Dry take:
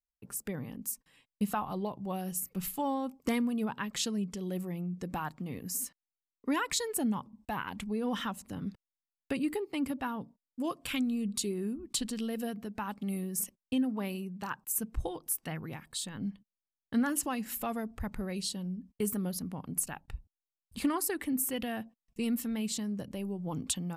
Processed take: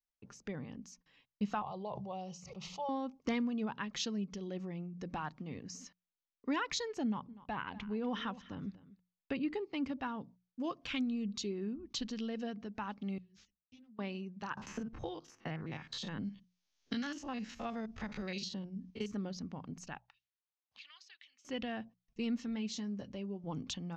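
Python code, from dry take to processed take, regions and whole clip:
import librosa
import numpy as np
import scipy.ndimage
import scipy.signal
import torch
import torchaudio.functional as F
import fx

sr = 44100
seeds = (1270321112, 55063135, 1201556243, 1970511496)

y = fx.chain(x, sr, fx.bandpass_edges(low_hz=100.0, high_hz=5200.0),
    fx.fixed_phaser(hz=670.0, stages=4),
    fx.sustainer(db_per_s=20.0), at=(1.62, 2.89))
y = fx.chain(y, sr, fx.lowpass(hz=4300.0, slope=12),
    fx.echo_single(ms=245, db=-17.5), at=(7.04, 9.53))
y = fx.chain(y, sr, fx.self_delay(depth_ms=0.19),
    fx.tone_stack(knobs='6-0-2'),
    fx.ensemble(), at=(13.18, 13.99))
y = fx.chain(y, sr, fx.spec_steps(hold_ms=50),
    fx.band_squash(depth_pct=100), at=(14.57, 19.14))
y = fx.chain(y, sr, fx.tone_stack(knobs='10-0-10'),
    fx.auto_wah(base_hz=700.0, top_hz=3300.0, q=2.5, full_db=-41.5, direction='up'),
    fx.band_squash(depth_pct=70), at=(19.98, 21.45))
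y = fx.chain(y, sr, fx.high_shelf(hz=9600.0, db=5.5),
    fx.notch_comb(f0_hz=160.0), at=(22.47, 23.44))
y = scipy.signal.sosfilt(scipy.signal.ellip(4, 1.0, 40, 6300.0, 'lowpass', fs=sr, output='sos'), y)
y = fx.hum_notches(y, sr, base_hz=60, count=3)
y = y * librosa.db_to_amplitude(-3.0)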